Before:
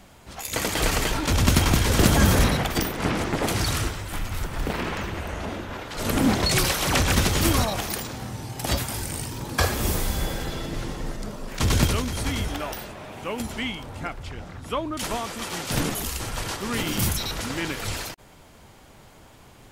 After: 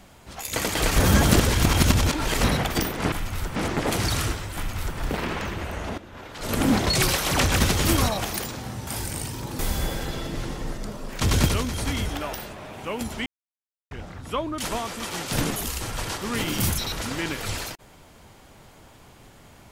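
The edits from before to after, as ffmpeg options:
-filter_complex "[0:a]asplit=10[a][b][c][d][e][f][g][h][i][j];[a]atrim=end=0.962[k];[b]atrim=start=0.958:end=2.432,asetpts=PTS-STARTPTS,areverse[l];[c]atrim=start=2.428:end=3.122[m];[d]atrim=start=4.108:end=4.552[n];[e]atrim=start=3.118:end=5.54,asetpts=PTS-STARTPTS,afade=t=out:st=2.418:d=0.004:c=hsin:silence=0.199526[o];[f]atrim=start=5.54:end=8.432,asetpts=PTS-STARTPTS,afade=t=in:d=0.63:silence=0.199526[p];[g]atrim=start=8.848:end=9.572[q];[h]atrim=start=9.978:end=13.65,asetpts=PTS-STARTPTS,afade=t=out:st=3.668:d=0.004:c=hsin[r];[i]atrim=start=13.65:end=14.3,asetpts=PTS-STARTPTS,volume=0[s];[j]atrim=start=14.3,asetpts=PTS-STARTPTS,afade=t=in:d=0.004:c=hsin[t];[k][l]acrossfade=d=0.004:c1=hsin:c2=hsin[u];[u][m]acrossfade=d=0.004:c1=hsin:c2=hsin[v];[v][n]acrossfade=d=0.004:c1=hsin:c2=hsin[w];[o][p]concat=n=2:v=0:a=1[x];[w][x]acrossfade=d=0.004:c1=hsin:c2=hsin[y];[y][q]acrossfade=d=0.004:c1=hsin:c2=hsin[z];[r][s][t]concat=n=3:v=0:a=1[aa];[z][aa]acrossfade=d=0.004:c1=hsin:c2=hsin"

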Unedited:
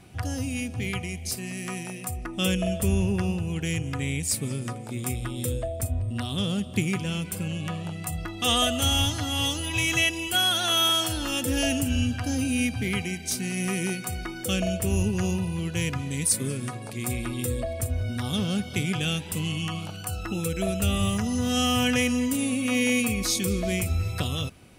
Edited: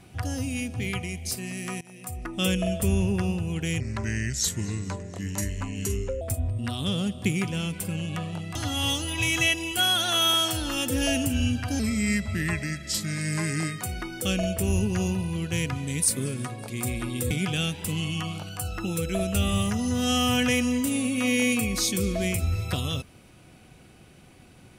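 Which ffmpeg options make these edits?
-filter_complex "[0:a]asplit=8[a][b][c][d][e][f][g][h];[a]atrim=end=1.81,asetpts=PTS-STARTPTS,afade=t=out:st=1.806:d=0.004:c=hsin:silence=0.0841395[i];[b]atrim=start=1.81:end=3.804,asetpts=PTS-STARTPTS,afade=t=in:d=0.46:silence=0.0841395[j];[c]atrim=start=3.8:end=5.73,asetpts=PTS-STARTPTS,asetrate=35280,aresample=44100,atrim=end_sample=106391,asetpts=PTS-STARTPTS[k];[d]atrim=start=5.726:end=8.072[l];[e]atrim=start=9.108:end=12.354[m];[f]atrim=start=12.35:end=14.05,asetpts=PTS-STARTPTS,asetrate=37044,aresample=44100[n];[g]atrim=start=14.046:end=17.542[o];[h]atrim=start=18.778[p];[i][j]concat=n=2:v=0:a=1[q];[q][k]acrossfade=d=0.004:c1=hsin:c2=hsin[r];[r][l]acrossfade=d=0.004:c1=hsin:c2=hsin[s];[s][m]acrossfade=d=0.004:c1=hsin:c2=hsin[t];[t][n]acrossfade=d=0.004:c1=hsin:c2=hsin[u];[u][o]acrossfade=d=0.004:c1=hsin:c2=hsin[v];[v][p]acrossfade=d=0.004:c1=hsin:c2=hsin"

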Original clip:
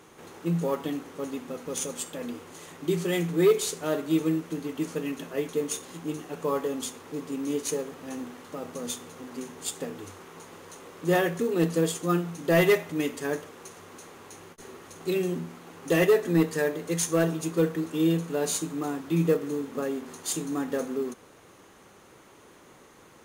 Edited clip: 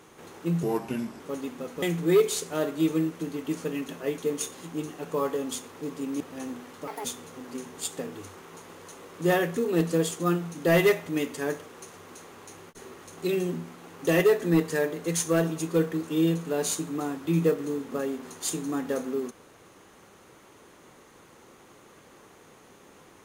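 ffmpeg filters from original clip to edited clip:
-filter_complex "[0:a]asplit=7[a][b][c][d][e][f][g];[a]atrim=end=0.634[h];[b]atrim=start=0.63:end=1.1,asetpts=PTS-STARTPTS,asetrate=36162,aresample=44100[i];[c]atrim=start=1.096:end=1.722[j];[d]atrim=start=3.128:end=7.512[k];[e]atrim=start=7.908:end=8.584[l];[f]atrim=start=8.58:end=8.88,asetpts=PTS-STARTPTS,asetrate=74970,aresample=44100,atrim=end_sample=7782,asetpts=PTS-STARTPTS[m];[g]atrim=start=8.876[n];[h][i]acrossfade=d=0.004:c1=hsin:c2=hsin[o];[o][j]acrossfade=d=0.004:c1=hsin:c2=hsin[p];[p][k]acrossfade=d=0.004:c1=hsin:c2=hsin[q];[q][l]acrossfade=d=0.004:c1=hsin:c2=hsin[r];[r][m]acrossfade=d=0.004:c1=hsin:c2=hsin[s];[s][n]acrossfade=d=0.004:c1=hsin:c2=hsin"

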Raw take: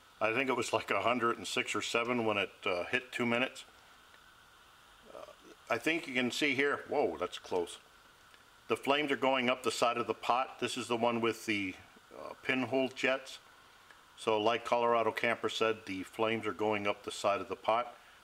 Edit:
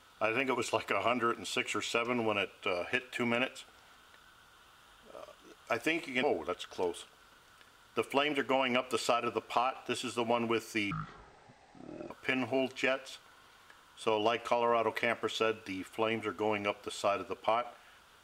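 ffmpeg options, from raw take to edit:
-filter_complex "[0:a]asplit=4[a][b][c][d];[a]atrim=end=6.232[e];[b]atrim=start=6.958:end=11.644[f];[c]atrim=start=11.64:end=12.31,asetpts=PTS-STARTPTS,asetrate=24696,aresample=44100,atrim=end_sample=52762,asetpts=PTS-STARTPTS[g];[d]atrim=start=12.306[h];[e][f]acrossfade=d=0.004:c1=hsin:c2=hsin[i];[i][g]acrossfade=d=0.004:c1=hsin:c2=hsin[j];[j][h]acrossfade=d=0.004:c1=hsin:c2=hsin"

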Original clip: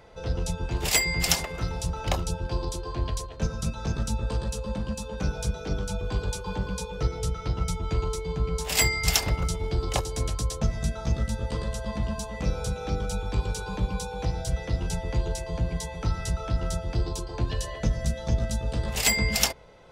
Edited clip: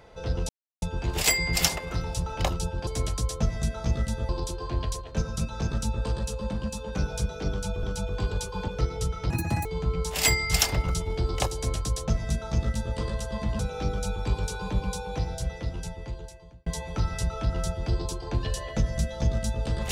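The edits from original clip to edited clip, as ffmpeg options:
-filter_complex "[0:a]asplit=10[a][b][c][d][e][f][g][h][i][j];[a]atrim=end=0.49,asetpts=PTS-STARTPTS,afade=t=out:st=0.486:d=0.004:c=hsin,apad=pad_dur=0.33[k];[b]atrim=start=0.49:end=2.542,asetpts=PTS-STARTPTS,afade=t=in:d=0.004:c=hsin[l];[c]atrim=start=10.078:end=11.502[m];[d]atrim=start=2.538:end=6.082[n];[e]atrim=start=5.748:end=6.602[o];[f]atrim=start=6.898:end=7.524[p];[g]atrim=start=7.52:end=8.19,asetpts=PTS-STARTPTS,asetrate=83790,aresample=44100,atrim=end_sample=15551,asetpts=PTS-STARTPTS[q];[h]atrim=start=8.186:end=12.132[r];[i]atrim=start=12.658:end=15.73,asetpts=PTS-STARTPTS,afade=t=out:st=1.442:d=1.63[s];[j]atrim=start=15.73,asetpts=PTS-STARTPTS,afade=t=in:d=0.004:c=hsin[t];[k][l]concat=n=2:v=0:a=1[u];[u][m]acrossfade=d=0.004:c1=hsin:c2=hsin[v];[v][n]acrossfade=d=0.004:c1=hsin:c2=hsin[w];[w][o]acrossfade=d=0.004:c1=hsin:c2=hsin[x];[x][p]acrossfade=d=0.004:c1=hsin:c2=hsin[y];[y][q]acrossfade=d=0.004:c1=hsin:c2=hsin[z];[z][r]acrossfade=d=0.004:c1=hsin:c2=hsin[aa];[s][t]concat=n=2:v=0:a=1[ab];[aa][ab]acrossfade=d=0.004:c1=hsin:c2=hsin"

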